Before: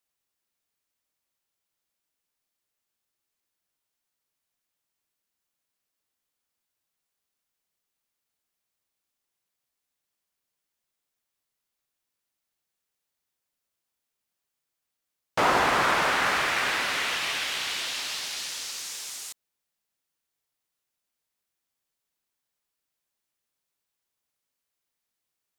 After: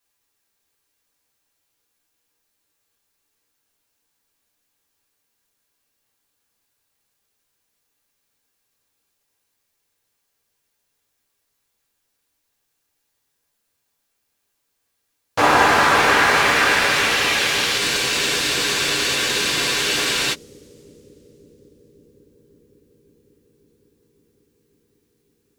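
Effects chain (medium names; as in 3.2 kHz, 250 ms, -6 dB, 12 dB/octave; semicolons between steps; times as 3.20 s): in parallel at -2 dB: peak limiter -20.5 dBFS, peak gain reduction 10 dB; on the sum: bucket-brigade echo 550 ms, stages 2048, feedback 76%, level -6 dB; two-slope reverb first 0.26 s, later 3.8 s, from -18 dB, DRR -5.5 dB; spectral freeze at 17.82 s, 2.50 s; trim -1 dB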